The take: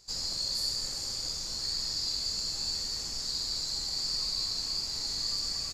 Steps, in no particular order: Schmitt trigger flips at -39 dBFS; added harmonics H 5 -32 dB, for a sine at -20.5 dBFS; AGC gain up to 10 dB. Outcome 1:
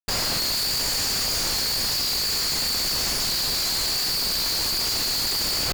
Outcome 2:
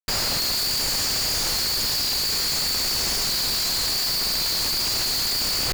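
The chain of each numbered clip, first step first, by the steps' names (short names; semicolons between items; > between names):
AGC > Schmitt trigger > added harmonics; added harmonics > AGC > Schmitt trigger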